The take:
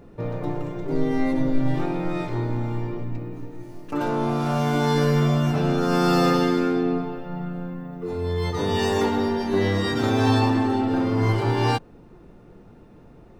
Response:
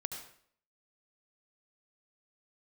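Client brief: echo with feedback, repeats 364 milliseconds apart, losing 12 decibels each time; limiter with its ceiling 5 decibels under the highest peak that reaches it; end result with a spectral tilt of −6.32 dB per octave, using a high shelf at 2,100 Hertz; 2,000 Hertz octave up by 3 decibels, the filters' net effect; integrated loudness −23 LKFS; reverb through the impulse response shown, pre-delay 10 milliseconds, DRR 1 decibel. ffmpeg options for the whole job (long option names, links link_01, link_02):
-filter_complex "[0:a]equalizer=frequency=2000:width_type=o:gain=8,highshelf=frequency=2100:gain=-8,alimiter=limit=-13dB:level=0:latency=1,aecho=1:1:364|728|1092:0.251|0.0628|0.0157,asplit=2[link_01][link_02];[1:a]atrim=start_sample=2205,adelay=10[link_03];[link_02][link_03]afir=irnorm=-1:irlink=0,volume=-1dB[link_04];[link_01][link_04]amix=inputs=2:normalize=0,volume=-1.5dB"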